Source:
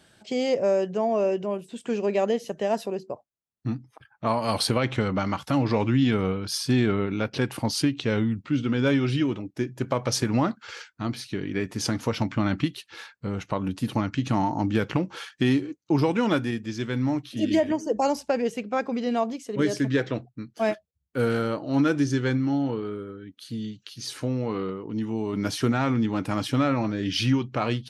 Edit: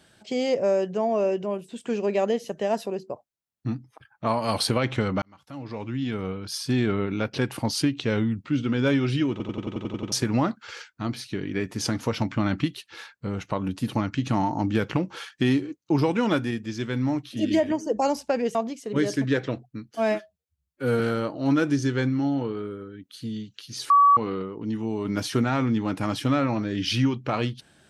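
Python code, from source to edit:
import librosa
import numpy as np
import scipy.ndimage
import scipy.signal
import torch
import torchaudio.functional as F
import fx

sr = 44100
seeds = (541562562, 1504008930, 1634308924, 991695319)

y = fx.edit(x, sr, fx.fade_in_span(start_s=5.22, length_s=1.9),
    fx.stutter_over(start_s=9.31, slice_s=0.09, count=9),
    fx.cut(start_s=18.55, length_s=0.63),
    fx.stretch_span(start_s=20.58, length_s=0.7, factor=1.5),
    fx.bleep(start_s=24.18, length_s=0.27, hz=1140.0, db=-12.5), tone=tone)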